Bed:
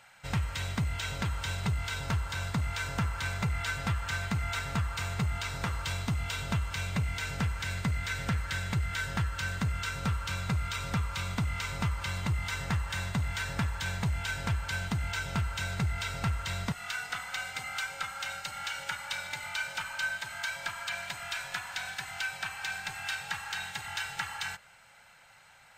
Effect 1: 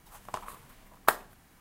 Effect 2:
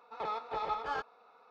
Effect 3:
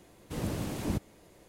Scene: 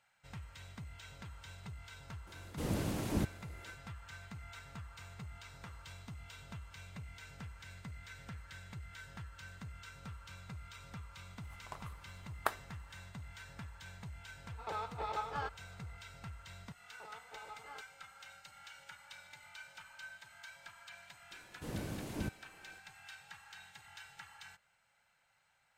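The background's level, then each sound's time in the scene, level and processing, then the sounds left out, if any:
bed -17.5 dB
2.27 s: add 3 -2 dB
11.38 s: add 1 -10.5 dB + treble shelf 9.2 kHz -8 dB
14.47 s: add 2 -4 dB
16.80 s: add 2 -16.5 dB
21.31 s: add 3 -7.5 dB

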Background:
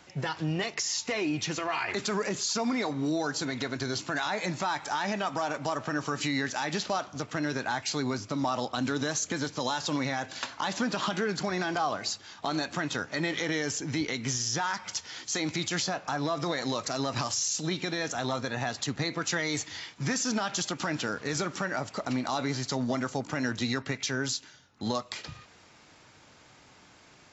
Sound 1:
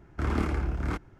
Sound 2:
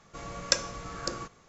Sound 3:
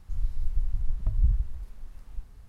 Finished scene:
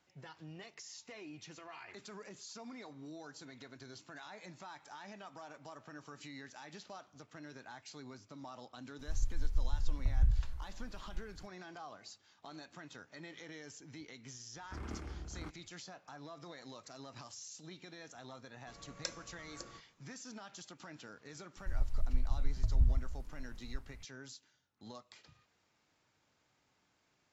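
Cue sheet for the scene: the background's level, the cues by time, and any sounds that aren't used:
background -20 dB
8.99 s: add 3 -5.5 dB
14.53 s: add 1 -16.5 dB
18.53 s: add 2 -16 dB
21.57 s: add 3 -5 dB

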